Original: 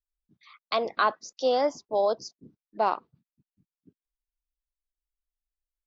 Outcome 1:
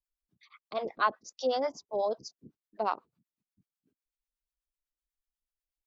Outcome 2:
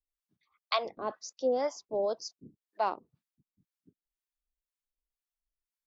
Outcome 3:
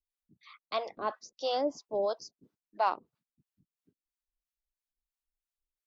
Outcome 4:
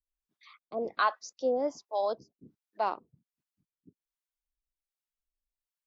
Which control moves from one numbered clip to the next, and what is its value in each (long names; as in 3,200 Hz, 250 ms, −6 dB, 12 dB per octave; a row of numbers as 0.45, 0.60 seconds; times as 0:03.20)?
two-band tremolo in antiphase, speed: 8.1, 2, 3, 1.3 Hertz